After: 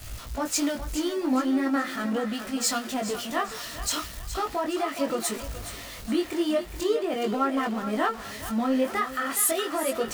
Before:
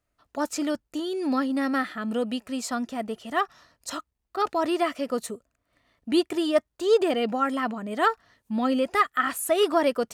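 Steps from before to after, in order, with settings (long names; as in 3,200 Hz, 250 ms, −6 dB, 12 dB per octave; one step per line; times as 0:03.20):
converter with a step at zero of −31 dBFS
downward compressor 6 to 1, threshold −25 dBFS, peak gain reduction 10.5 dB
chorus effect 0.39 Hz, delay 18 ms, depth 5.3 ms
on a send: feedback echo with a high-pass in the loop 419 ms, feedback 50%, high-pass 460 Hz, level −7.5 dB
on the sum: multiband upward and downward expander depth 70%
level +4 dB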